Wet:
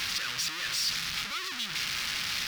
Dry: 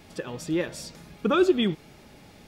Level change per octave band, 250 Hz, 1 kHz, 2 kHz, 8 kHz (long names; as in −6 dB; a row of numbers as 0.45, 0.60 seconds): −24.0, −5.5, +5.0, +10.5 decibels